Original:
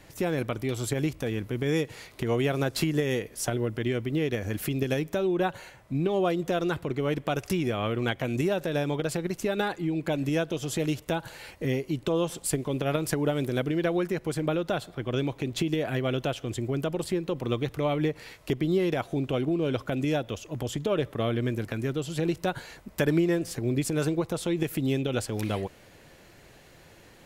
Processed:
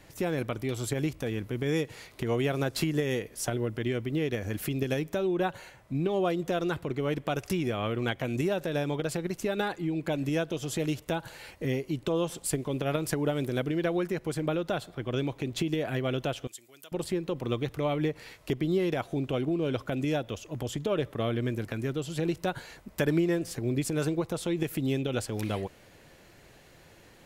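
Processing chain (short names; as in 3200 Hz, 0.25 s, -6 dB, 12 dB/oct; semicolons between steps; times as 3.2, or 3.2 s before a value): 16.47–16.92 differentiator; gain -2 dB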